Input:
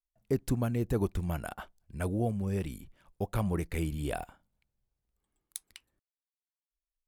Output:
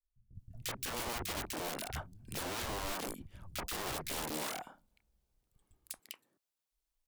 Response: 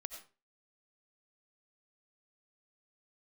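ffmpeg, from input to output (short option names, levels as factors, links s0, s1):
-filter_complex "[0:a]asettb=1/sr,asplit=3[s0][s1][s2];[s0]atrim=end=2.264[s3];[s1]atrim=start=2.26:end=3.32,asetpts=PTS-STARTPTS,afade=t=in:d=0.004:c=qsin,afade=t=out:st=1.056:d=0.004:c=qsin,lowshelf=f=100:g=6.5[s4];[s2]atrim=start=3.316[s5];[s3][s4]acrossfade=d=0.004:c1=hsin:c2=qsin[s6];[s6][s5]acrossfade=d=0.004:c1=qsin:c2=hsin,aeval=exprs='(mod(44.7*val(0)+1,2)-1)/44.7':c=same,acompressor=threshold=0.00708:ratio=4,acrossover=split=150|1800[s7][s8][s9];[s9]adelay=350[s10];[s8]adelay=380[s11];[s7][s11][s10]amix=inputs=3:normalize=0,volume=2"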